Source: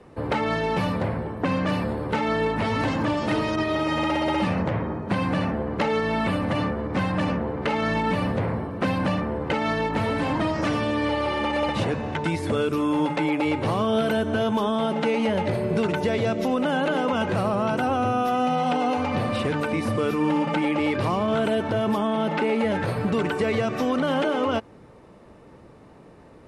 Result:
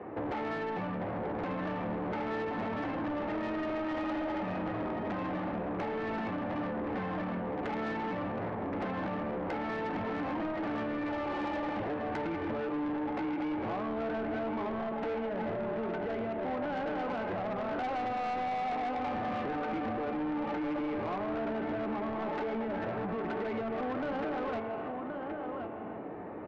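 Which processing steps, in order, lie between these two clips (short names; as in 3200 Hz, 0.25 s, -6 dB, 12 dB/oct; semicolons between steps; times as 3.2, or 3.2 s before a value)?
on a send at -7.5 dB: reverb RT60 1.0 s, pre-delay 5 ms; on the sum: compressor 10:1, threshold -33 dBFS, peak gain reduction 17.5 dB; speaker cabinet 120–2200 Hz, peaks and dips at 150 Hz -8 dB, 320 Hz +5 dB, 740 Hz +7 dB; in parallel at -2 dB: limiter -29.5 dBFS, peak gain reduction 10.5 dB; on the sum: echo 1.073 s -7.5 dB; soft clip -30.5 dBFS, distortion -11 dB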